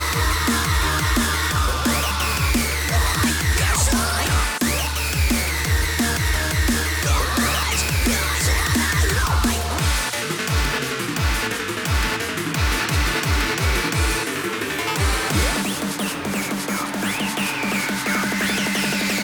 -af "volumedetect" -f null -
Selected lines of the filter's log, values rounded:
mean_volume: -20.7 dB
max_volume: -11.4 dB